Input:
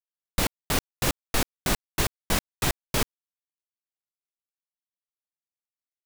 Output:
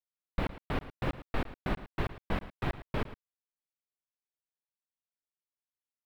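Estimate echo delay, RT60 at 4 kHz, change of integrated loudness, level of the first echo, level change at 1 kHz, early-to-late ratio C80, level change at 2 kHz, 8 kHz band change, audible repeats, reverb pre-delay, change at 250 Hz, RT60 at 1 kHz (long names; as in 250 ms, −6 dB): 111 ms, no reverb audible, −9.5 dB, −15.0 dB, −6.5 dB, no reverb audible, −9.0 dB, −34.0 dB, 1, no reverb audible, −5.0 dB, no reverb audible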